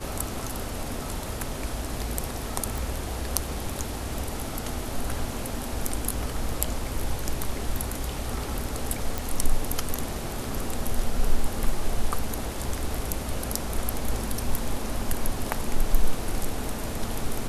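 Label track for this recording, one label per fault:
2.780000	2.780000	pop
9.180000	9.180000	pop

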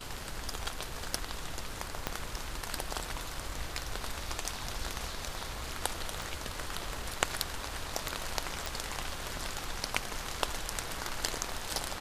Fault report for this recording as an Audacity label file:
2.070000	2.070000	pop -14 dBFS
6.220000	6.220000	pop
8.660000	8.660000	pop

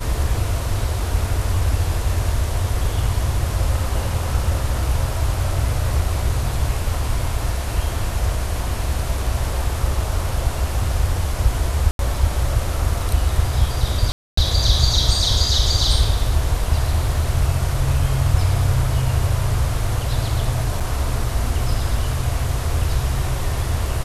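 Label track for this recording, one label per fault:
11.910000	11.990000	gap 82 ms
14.120000	14.370000	gap 0.254 s
20.800000	20.810000	gap 6.3 ms

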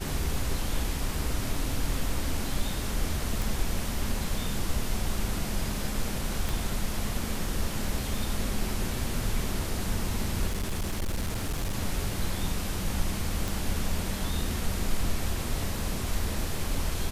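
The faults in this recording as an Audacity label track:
3.420000	3.420000	pop
6.490000	6.490000	pop
10.490000	11.750000	clipped -25.5 dBFS
13.480000	13.480000	pop

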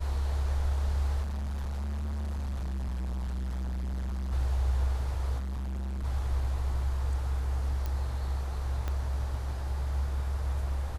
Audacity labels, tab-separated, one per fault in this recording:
1.220000	4.330000	clipped -31 dBFS
5.380000	6.050000	clipped -32 dBFS
7.860000	7.860000	pop -21 dBFS
8.880000	8.880000	pop -21 dBFS

